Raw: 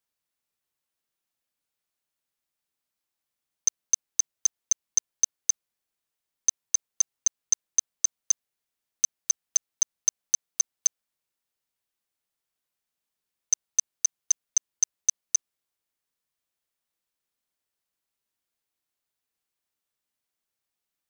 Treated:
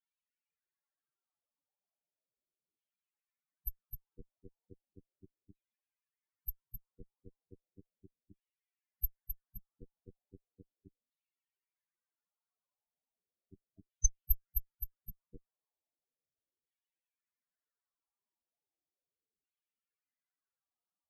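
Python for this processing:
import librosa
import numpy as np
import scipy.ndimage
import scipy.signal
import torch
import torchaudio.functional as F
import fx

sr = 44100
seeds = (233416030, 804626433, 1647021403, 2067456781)

y = fx.filter_lfo_lowpass(x, sr, shape='saw_down', hz=0.36, low_hz=440.0, high_hz=3900.0, q=1.2)
y = fx.cheby_harmonics(y, sr, harmonics=(2, 3, 4, 8), levels_db=(-18, -13, -14, -13), full_scale_db=-17.5)
y = fx.spec_topn(y, sr, count=8)
y = y * 10.0 ** (8.0 / 20.0)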